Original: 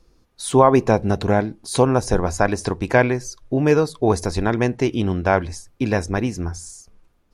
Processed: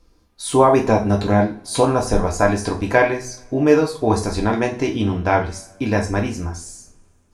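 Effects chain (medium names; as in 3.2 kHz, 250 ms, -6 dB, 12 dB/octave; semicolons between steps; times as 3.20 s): two-slope reverb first 0.35 s, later 2.1 s, from -28 dB, DRR 0 dB; trim -1.5 dB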